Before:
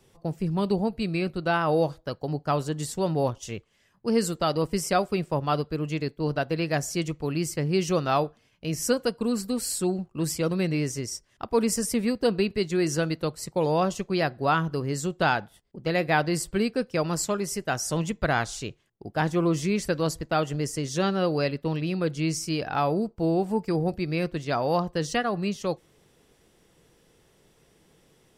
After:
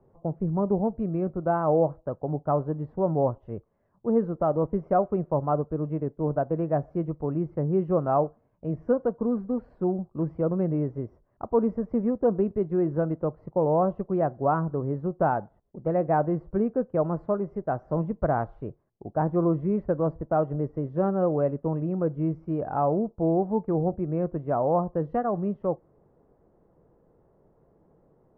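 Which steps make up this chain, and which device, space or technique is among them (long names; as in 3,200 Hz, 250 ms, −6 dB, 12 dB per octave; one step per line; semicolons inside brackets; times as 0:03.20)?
under water (low-pass filter 1,100 Hz 24 dB per octave; parametric band 610 Hz +4 dB 0.38 octaves)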